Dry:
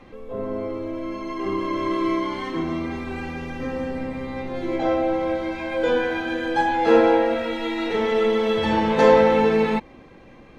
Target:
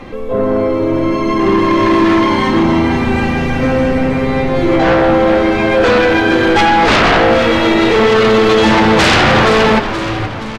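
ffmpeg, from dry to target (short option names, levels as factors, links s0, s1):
-filter_complex "[0:a]aeval=exprs='0.708*sin(PI/2*6.31*val(0)/0.708)':c=same,asplit=2[s0][s1];[s1]asplit=6[s2][s3][s4][s5][s6][s7];[s2]adelay=473,afreqshift=-110,volume=0.355[s8];[s3]adelay=946,afreqshift=-220,volume=0.182[s9];[s4]adelay=1419,afreqshift=-330,volume=0.0923[s10];[s5]adelay=1892,afreqshift=-440,volume=0.0473[s11];[s6]adelay=2365,afreqshift=-550,volume=0.024[s12];[s7]adelay=2838,afreqshift=-660,volume=0.0123[s13];[s8][s9][s10][s11][s12][s13]amix=inputs=6:normalize=0[s14];[s0][s14]amix=inputs=2:normalize=0,volume=0.631"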